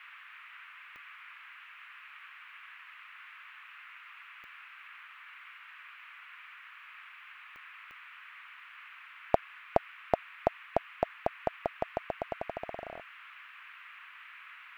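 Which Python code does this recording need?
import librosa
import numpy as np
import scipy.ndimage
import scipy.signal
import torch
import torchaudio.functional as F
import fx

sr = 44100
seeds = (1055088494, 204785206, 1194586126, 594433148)

y = fx.fix_declick_ar(x, sr, threshold=10.0)
y = fx.noise_reduce(y, sr, print_start_s=13.03, print_end_s=13.53, reduce_db=30.0)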